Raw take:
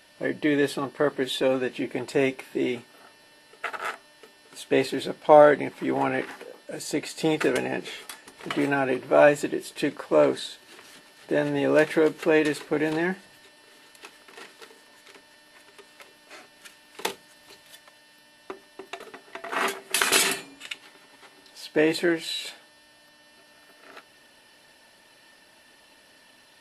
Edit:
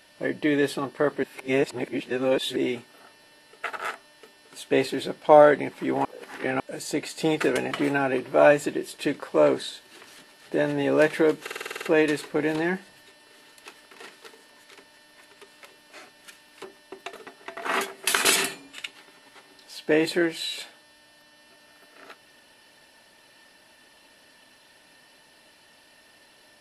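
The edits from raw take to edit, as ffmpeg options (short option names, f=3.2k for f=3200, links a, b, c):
-filter_complex "[0:a]asplit=15[a][b][c][d][e][f][g][h][i][j][k][l][m][n][o];[a]atrim=end=1.232[p];[b]atrim=start=1.228:end=2.562,asetpts=PTS-STARTPTS,areverse[q];[c]atrim=start=2.558:end=6.052[r];[d]atrim=start=6.048:end=6.602,asetpts=PTS-STARTPTS,areverse[s];[e]atrim=start=6.598:end=7.712[t];[f]atrim=start=8.478:end=12.242[u];[g]atrim=start=12.188:end=12.242[v];[h]atrim=start=12.188:end=12.242[w];[i]atrim=start=12.188:end=12.242[x];[j]atrim=start=12.188:end=12.242[y];[k]atrim=start=12.188:end=12.242[z];[l]atrim=start=12.188:end=12.242[aa];[m]atrim=start=12.188:end=12.242[ab];[n]atrim=start=12.188:end=17.012[ac];[o]atrim=start=18.508[ad];[p][q]acrossfade=d=0.004:c1=hsin:c2=hsin[ae];[ae][r]acrossfade=d=0.004:c1=hsin:c2=hsin[af];[af][s]acrossfade=d=0.004:c1=hsin:c2=hsin[ag];[ag][t]acrossfade=d=0.004:c1=hsin:c2=hsin[ah];[ah][u]acrossfade=d=0.004:c1=hsin:c2=hsin[ai];[ai][v]acrossfade=d=0.004:c1=hsin:c2=hsin[aj];[aj][w]acrossfade=d=0.004:c1=hsin:c2=hsin[ak];[ak][x]acrossfade=d=0.004:c1=hsin:c2=hsin[al];[al][y]acrossfade=d=0.004:c1=hsin:c2=hsin[am];[am][z]acrossfade=d=0.004:c1=hsin:c2=hsin[an];[an][aa]acrossfade=d=0.004:c1=hsin:c2=hsin[ao];[ao][ab]acrossfade=d=0.004:c1=hsin:c2=hsin[ap];[ap][ac]acrossfade=d=0.004:c1=hsin:c2=hsin[aq];[aq][ad]acrossfade=d=0.004:c1=hsin:c2=hsin"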